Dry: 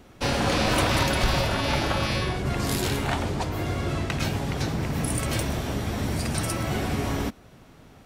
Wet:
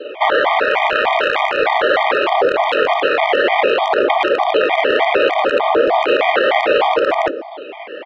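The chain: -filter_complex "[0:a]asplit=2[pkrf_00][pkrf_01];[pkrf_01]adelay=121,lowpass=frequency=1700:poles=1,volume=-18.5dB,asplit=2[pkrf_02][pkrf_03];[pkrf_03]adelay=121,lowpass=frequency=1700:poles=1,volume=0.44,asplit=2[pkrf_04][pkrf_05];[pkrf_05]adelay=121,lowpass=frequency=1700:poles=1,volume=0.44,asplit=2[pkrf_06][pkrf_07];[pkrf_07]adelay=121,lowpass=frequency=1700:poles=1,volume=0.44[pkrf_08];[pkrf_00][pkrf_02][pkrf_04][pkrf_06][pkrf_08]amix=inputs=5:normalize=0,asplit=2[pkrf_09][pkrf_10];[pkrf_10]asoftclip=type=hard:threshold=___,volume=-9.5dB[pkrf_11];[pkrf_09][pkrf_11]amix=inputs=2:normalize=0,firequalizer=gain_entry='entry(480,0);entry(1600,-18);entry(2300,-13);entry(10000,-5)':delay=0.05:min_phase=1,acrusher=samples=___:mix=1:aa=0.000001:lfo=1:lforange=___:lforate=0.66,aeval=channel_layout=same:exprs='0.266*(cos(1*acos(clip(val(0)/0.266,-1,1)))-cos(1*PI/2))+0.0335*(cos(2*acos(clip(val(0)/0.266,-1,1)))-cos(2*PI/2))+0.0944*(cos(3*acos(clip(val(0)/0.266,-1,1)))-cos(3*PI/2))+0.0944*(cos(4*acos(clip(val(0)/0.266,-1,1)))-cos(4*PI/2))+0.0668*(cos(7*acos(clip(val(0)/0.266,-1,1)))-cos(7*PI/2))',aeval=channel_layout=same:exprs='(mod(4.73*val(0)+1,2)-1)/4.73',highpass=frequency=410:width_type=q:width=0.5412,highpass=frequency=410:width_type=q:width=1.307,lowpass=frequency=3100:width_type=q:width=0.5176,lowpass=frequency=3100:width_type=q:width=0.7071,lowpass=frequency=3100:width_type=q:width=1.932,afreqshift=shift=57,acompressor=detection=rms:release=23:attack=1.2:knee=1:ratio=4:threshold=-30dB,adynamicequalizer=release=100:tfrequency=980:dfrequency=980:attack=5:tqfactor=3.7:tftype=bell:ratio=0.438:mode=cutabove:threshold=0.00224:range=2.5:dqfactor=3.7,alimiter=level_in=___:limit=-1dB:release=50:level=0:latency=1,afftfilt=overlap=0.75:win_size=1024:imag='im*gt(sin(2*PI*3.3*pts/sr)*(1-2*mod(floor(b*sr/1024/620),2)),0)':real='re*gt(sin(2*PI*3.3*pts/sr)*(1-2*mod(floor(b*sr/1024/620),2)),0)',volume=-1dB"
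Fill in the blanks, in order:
-20.5dB, 12, 12, 26dB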